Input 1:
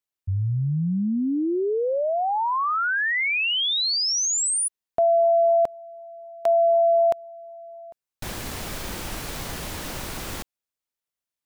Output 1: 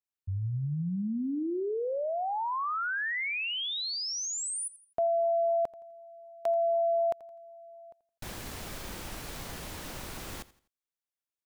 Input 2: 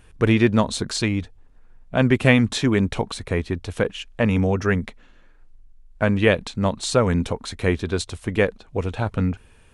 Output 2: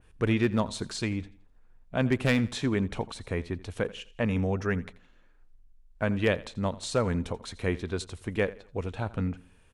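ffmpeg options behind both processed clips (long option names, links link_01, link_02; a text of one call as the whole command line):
ffmpeg -i in.wav -af "aeval=exprs='0.473*(abs(mod(val(0)/0.473+3,4)-2)-1)':channel_layout=same,aecho=1:1:84|168|252:0.112|0.0393|0.0137,adynamicequalizer=threshold=0.0158:dfrequency=2600:dqfactor=0.7:tfrequency=2600:tqfactor=0.7:attack=5:release=100:ratio=0.375:range=1.5:mode=cutabove:tftype=highshelf,volume=-8dB" out.wav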